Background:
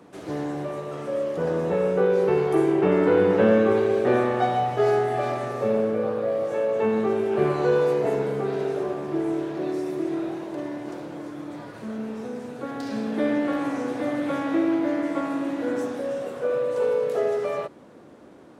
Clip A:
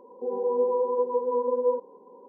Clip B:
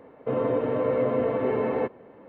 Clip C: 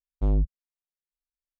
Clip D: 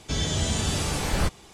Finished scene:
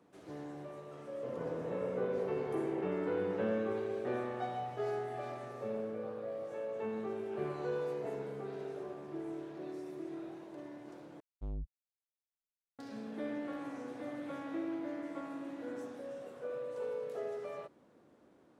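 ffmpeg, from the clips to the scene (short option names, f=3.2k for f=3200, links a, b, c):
-filter_complex "[0:a]volume=-16dB,asplit=2[a][b];[a]atrim=end=11.204[c];[3:a]atrim=end=1.59,asetpts=PTS-STARTPTS,volume=-17.5dB[d];[b]atrim=start=12.786[e];[2:a]atrim=end=2.28,asetpts=PTS-STARTPTS,volume=-17.5dB,afade=t=in:d=0.004:c=hsin,afade=t=out:st=2.276:d=0.004:c=hsin,adelay=960[f];[c][d]acrossfade=d=0.004:c1=hsin:c2=hsin[g];[g][e]acrossfade=d=0.004:c1=hsin:c2=hsin[h];[h][f]amix=inputs=2:normalize=0"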